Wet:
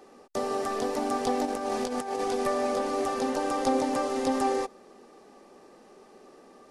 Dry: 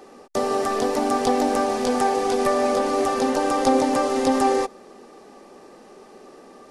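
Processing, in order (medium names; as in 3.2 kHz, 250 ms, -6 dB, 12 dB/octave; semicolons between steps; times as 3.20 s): 1.45–2.28 s: compressor with a negative ratio -23 dBFS, ratio -0.5; trim -7 dB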